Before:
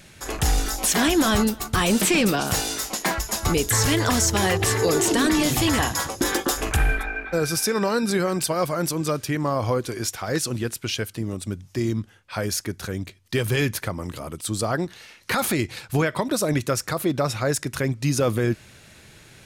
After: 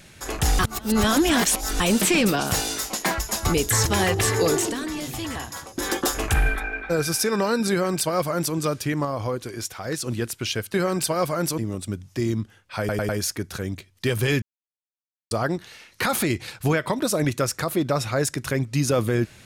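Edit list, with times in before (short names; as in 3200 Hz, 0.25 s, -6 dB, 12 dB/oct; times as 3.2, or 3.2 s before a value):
0.59–1.8 reverse
3.86–4.29 cut
4.94–6.41 dip -10 dB, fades 0.26 s
8.14–8.98 copy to 11.17
9.48–10.49 gain -4 dB
12.38 stutter 0.10 s, 4 plays
13.71–14.6 mute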